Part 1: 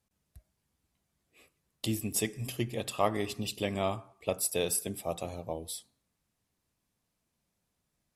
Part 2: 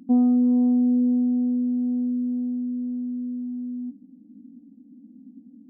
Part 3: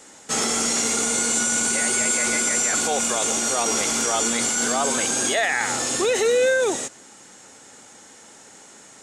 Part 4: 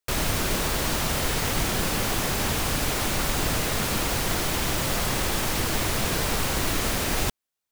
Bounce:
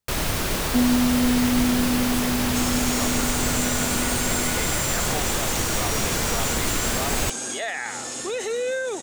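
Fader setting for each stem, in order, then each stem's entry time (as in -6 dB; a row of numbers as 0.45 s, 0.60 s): -8.0 dB, -2.0 dB, -7.5 dB, +0.5 dB; 0.00 s, 0.65 s, 2.25 s, 0.00 s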